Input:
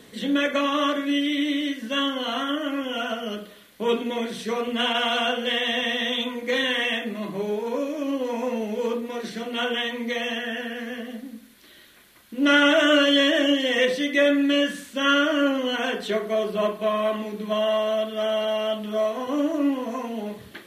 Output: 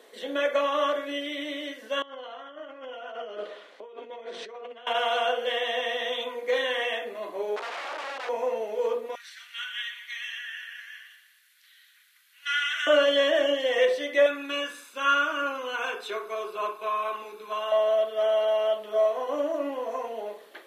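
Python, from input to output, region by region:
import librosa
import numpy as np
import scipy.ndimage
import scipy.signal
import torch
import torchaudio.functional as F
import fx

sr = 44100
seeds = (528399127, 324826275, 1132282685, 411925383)

y = fx.chain(x, sr, fx.over_compress(threshold_db=-37.0, ratio=-1.0),
    fx.air_absorb(metres=120.0), at=(2.02, 4.87))
y = fx.chain(y, sr, fx.overflow_wrap(gain_db=26.0),
    fx.bandpass_edges(low_hz=170.0, high_hz=2900.0),
    fx.tilt_eq(slope=2.5), at=(7.56, 8.29))
y = fx.chain(y, sr, fx.steep_highpass(hz=1500.0, slope=36),
    fx.echo_feedback(ms=121, feedback_pct=50, wet_db=-11.0), at=(9.15, 12.87))
y = fx.chain(y, sr, fx.low_shelf(hz=310.0, db=-11.5),
    fx.comb(ms=0.8, depth=0.7), at=(14.26, 17.72))
y = scipy.signal.sosfilt(scipy.signal.butter(4, 500.0, 'highpass', fs=sr, output='sos'), y)
y = fx.tilt_shelf(y, sr, db=7.5, hz=840.0)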